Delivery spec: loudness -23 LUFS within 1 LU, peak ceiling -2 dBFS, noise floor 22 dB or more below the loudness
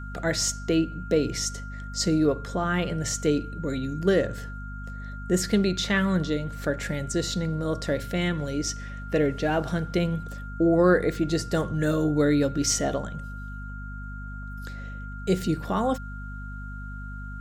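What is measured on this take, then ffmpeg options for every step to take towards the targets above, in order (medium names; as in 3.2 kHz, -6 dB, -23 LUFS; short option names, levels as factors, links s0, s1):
hum 50 Hz; highest harmonic 250 Hz; hum level -35 dBFS; steady tone 1.4 kHz; tone level -41 dBFS; loudness -26.0 LUFS; peak level -8.5 dBFS; loudness target -23.0 LUFS
-> -af "bandreject=f=50:t=h:w=4,bandreject=f=100:t=h:w=4,bandreject=f=150:t=h:w=4,bandreject=f=200:t=h:w=4,bandreject=f=250:t=h:w=4"
-af "bandreject=f=1400:w=30"
-af "volume=1.41"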